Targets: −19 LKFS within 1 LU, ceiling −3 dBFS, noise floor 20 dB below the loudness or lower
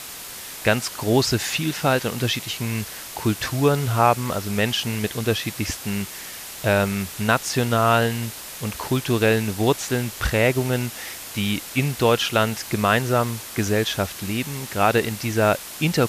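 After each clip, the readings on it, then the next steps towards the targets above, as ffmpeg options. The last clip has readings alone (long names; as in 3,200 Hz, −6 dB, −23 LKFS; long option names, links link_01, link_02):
background noise floor −37 dBFS; target noise floor −43 dBFS; integrated loudness −22.5 LKFS; sample peak −4.0 dBFS; target loudness −19.0 LKFS
→ -af "afftdn=noise_reduction=6:noise_floor=-37"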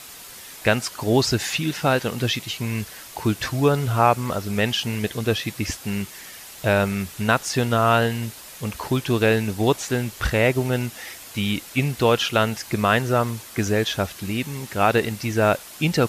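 background noise floor −41 dBFS; target noise floor −43 dBFS
→ -af "afftdn=noise_reduction=6:noise_floor=-41"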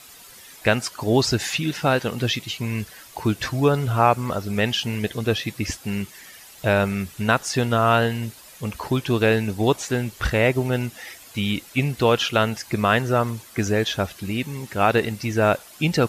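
background noise floor −46 dBFS; integrated loudness −22.5 LKFS; sample peak −4.0 dBFS; target loudness −19.0 LKFS
→ -af "volume=3.5dB,alimiter=limit=-3dB:level=0:latency=1"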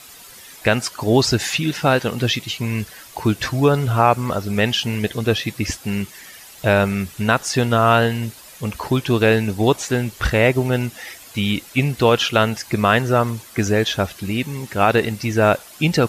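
integrated loudness −19.5 LKFS; sample peak −3.0 dBFS; background noise floor −42 dBFS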